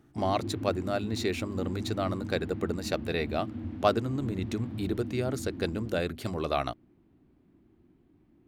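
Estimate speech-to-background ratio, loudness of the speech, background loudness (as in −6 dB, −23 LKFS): 7.0 dB, −32.0 LKFS, −39.0 LKFS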